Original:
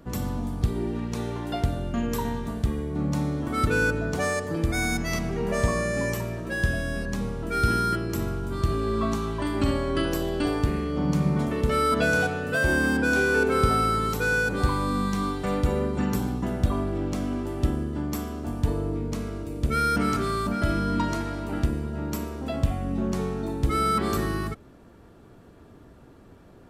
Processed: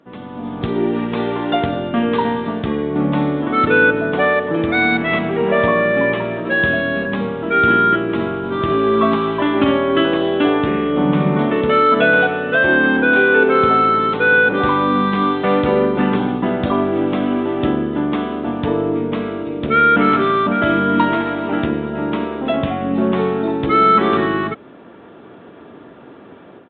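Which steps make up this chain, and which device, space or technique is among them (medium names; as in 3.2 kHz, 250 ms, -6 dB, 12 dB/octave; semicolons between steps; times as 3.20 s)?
Bluetooth headset (high-pass 240 Hz 12 dB/octave; level rider gain up to 14 dB; resampled via 8 kHz; SBC 64 kbps 16 kHz)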